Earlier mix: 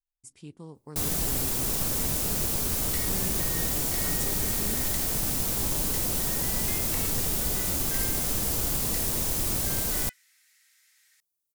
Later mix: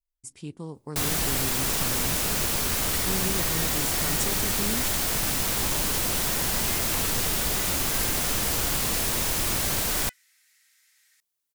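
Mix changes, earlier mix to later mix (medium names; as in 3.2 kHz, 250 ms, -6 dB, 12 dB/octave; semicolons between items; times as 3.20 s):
speech +6.5 dB; first sound: add peaking EQ 2 kHz +9.5 dB 2.9 oct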